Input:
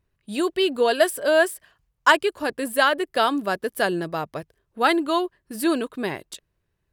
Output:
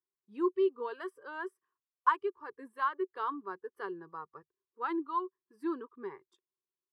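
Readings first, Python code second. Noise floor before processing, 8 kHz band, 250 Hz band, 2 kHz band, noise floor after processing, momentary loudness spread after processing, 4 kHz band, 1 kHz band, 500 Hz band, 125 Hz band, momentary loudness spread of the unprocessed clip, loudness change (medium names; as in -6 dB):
-75 dBFS, under -35 dB, -12.5 dB, -19.0 dB, under -85 dBFS, 16 LU, -29.0 dB, -10.5 dB, -14.0 dB, under -25 dB, 13 LU, -13.0 dB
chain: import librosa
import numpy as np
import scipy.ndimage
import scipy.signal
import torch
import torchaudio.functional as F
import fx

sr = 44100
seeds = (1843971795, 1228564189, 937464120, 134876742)

y = fx.double_bandpass(x, sr, hz=630.0, octaves=1.5)
y = fx.wow_flutter(y, sr, seeds[0], rate_hz=2.1, depth_cents=27.0)
y = fx.noise_reduce_blind(y, sr, reduce_db=12)
y = F.gain(torch.from_numpy(y), -4.0).numpy()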